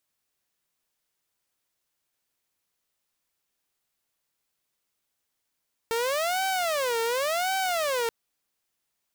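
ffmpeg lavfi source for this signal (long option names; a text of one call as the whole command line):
ffmpeg -f lavfi -i "aevalsrc='0.0794*(2*mod((612*t-156/(2*PI*0.91)*sin(2*PI*0.91*t)),1)-1)':duration=2.18:sample_rate=44100" out.wav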